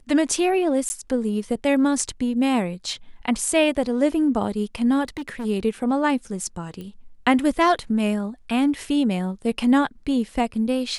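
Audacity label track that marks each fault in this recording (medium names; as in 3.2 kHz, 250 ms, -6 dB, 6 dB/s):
0.890000	0.900000	dropout 10 ms
5.040000	5.460000	clipped -26.5 dBFS
6.810000	6.810000	pop -24 dBFS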